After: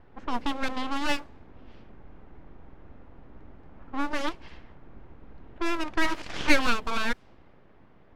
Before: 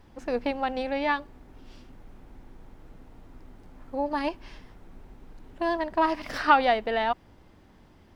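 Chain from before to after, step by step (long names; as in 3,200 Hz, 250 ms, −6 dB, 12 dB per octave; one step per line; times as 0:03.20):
full-wave rectification
low-pass that shuts in the quiet parts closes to 2,000 Hz, open at −22.5 dBFS
level +1.5 dB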